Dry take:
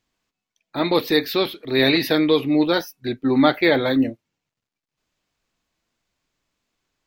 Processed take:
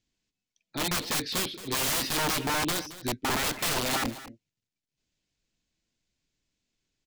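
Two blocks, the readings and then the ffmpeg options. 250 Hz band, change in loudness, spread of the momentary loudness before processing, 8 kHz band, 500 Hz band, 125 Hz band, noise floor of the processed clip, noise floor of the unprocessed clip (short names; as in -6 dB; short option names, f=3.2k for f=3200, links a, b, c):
-16.0 dB, -8.5 dB, 8 LU, n/a, -15.5 dB, -7.0 dB, under -85 dBFS, under -85 dBFS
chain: -filter_complex "[0:a]lowpass=f=8.5k:w=0.5412,lowpass=f=8.5k:w=1.3066,equalizer=f=970:w=0.6:g=-12.5,bandreject=f=1.2k:w=10,aeval=exprs='(mod(11.9*val(0)+1,2)-1)/11.9':c=same,asplit=2[a][b];[b]aecho=0:1:222:0.168[c];[a][c]amix=inputs=2:normalize=0,volume=-1.5dB"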